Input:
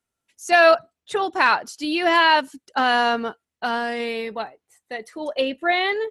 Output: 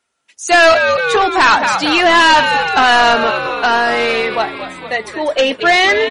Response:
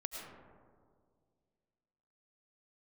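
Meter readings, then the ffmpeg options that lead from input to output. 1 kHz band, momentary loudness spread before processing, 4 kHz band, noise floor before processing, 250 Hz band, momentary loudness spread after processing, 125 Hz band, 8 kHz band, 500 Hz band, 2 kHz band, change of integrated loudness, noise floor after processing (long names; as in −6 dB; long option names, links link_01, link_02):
+9.0 dB, 17 LU, +10.5 dB, below −85 dBFS, +7.0 dB, 11 LU, can't be measured, +14.5 dB, +8.0 dB, +10.0 dB, +8.5 dB, −65 dBFS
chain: -filter_complex "[0:a]asplit=9[link_01][link_02][link_03][link_04][link_05][link_06][link_07][link_08][link_09];[link_02]adelay=226,afreqshift=-94,volume=-11.5dB[link_10];[link_03]adelay=452,afreqshift=-188,volume=-15.2dB[link_11];[link_04]adelay=678,afreqshift=-282,volume=-19dB[link_12];[link_05]adelay=904,afreqshift=-376,volume=-22.7dB[link_13];[link_06]adelay=1130,afreqshift=-470,volume=-26.5dB[link_14];[link_07]adelay=1356,afreqshift=-564,volume=-30.2dB[link_15];[link_08]adelay=1582,afreqshift=-658,volume=-34dB[link_16];[link_09]adelay=1808,afreqshift=-752,volume=-37.7dB[link_17];[link_01][link_10][link_11][link_12][link_13][link_14][link_15][link_16][link_17]amix=inputs=9:normalize=0,asplit=2[link_18][link_19];[link_19]highpass=frequency=720:poles=1,volume=20dB,asoftclip=type=tanh:threshold=-3.5dB[link_20];[link_18][link_20]amix=inputs=2:normalize=0,lowpass=frequency=5500:poles=1,volume=-6dB,volume=2dB" -ar 44100 -c:a libmp3lame -b:a 40k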